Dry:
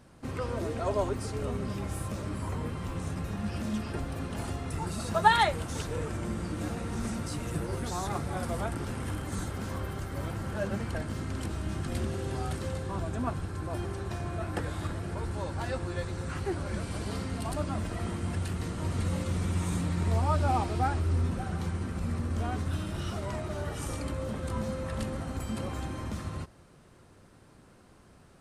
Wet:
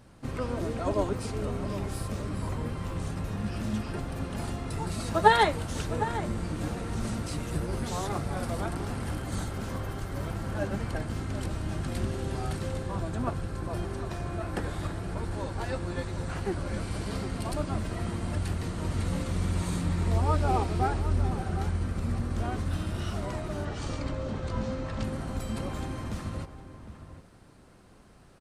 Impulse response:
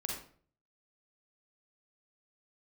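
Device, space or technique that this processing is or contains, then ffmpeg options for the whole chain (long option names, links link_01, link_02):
octave pedal: -filter_complex "[0:a]asplit=2[link_01][link_02];[link_02]asetrate=22050,aresample=44100,atempo=2,volume=-5dB[link_03];[link_01][link_03]amix=inputs=2:normalize=0,asettb=1/sr,asplit=3[link_04][link_05][link_06];[link_04]atrim=end=23.654[link_07];[link_05]atrim=start=23.65:end=25.04,asetpts=PTS-STARTPTS,afade=type=in:duration=0.004:curve=qsin,afade=type=out:start_time=1.386:duration=0.004:curve=qsin,lowpass=frequency=7000:width=0.5412,lowpass=frequency=7000:width=1.3066[link_08];[link_06]atrim=start=25.036[link_09];[link_07][link_08]acrossfade=duration=0.004:curve1=hsin:curve2=qsin[link_10];[link_10][link_09]acrossfade=duration=0.004:curve1=qsin:curve2=hsin,asplit=2[link_11][link_12];[link_12]adelay=758,volume=-11dB,highshelf=frequency=4000:gain=-17.1[link_13];[link_11][link_13]amix=inputs=2:normalize=0"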